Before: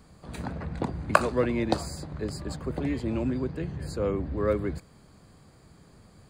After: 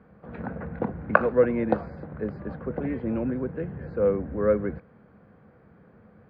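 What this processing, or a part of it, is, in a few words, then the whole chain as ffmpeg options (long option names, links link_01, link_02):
bass cabinet: -af "highpass=65,equalizer=frequency=210:width_type=q:width=4:gain=8,equalizer=frequency=490:width_type=q:width=4:gain=10,equalizer=frequency=750:width_type=q:width=4:gain=3,equalizer=frequency=1500:width_type=q:width=4:gain=7,lowpass=frequency=2300:width=0.5412,lowpass=frequency=2300:width=1.3066,volume=-2.5dB"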